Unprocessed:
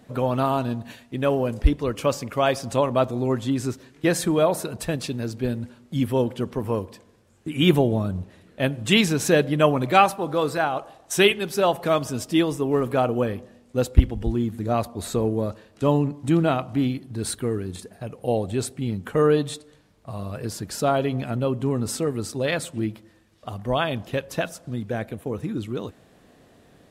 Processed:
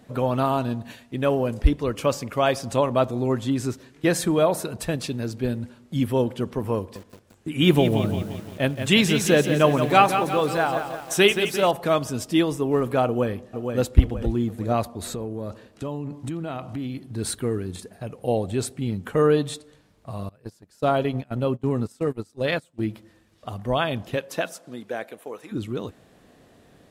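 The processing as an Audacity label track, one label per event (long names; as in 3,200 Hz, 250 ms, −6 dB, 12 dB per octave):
6.780000	11.710000	feedback echo at a low word length 174 ms, feedback 55%, word length 7 bits, level −8 dB
13.060000	13.780000	delay throw 470 ms, feedback 45%, level −5.5 dB
14.930000	17.060000	downward compressor, threshold −27 dBFS
20.290000	22.870000	noise gate −27 dBFS, range −24 dB
24.150000	25.510000	high-pass filter 180 Hz → 670 Hz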